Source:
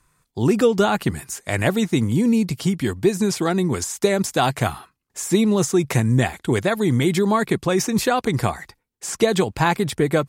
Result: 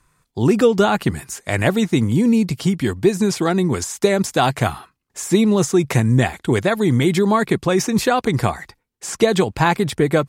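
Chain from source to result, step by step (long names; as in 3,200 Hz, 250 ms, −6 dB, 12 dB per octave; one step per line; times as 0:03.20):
high-shelf EQ 7,500 Hz −4.5 dB
level +2.5 dB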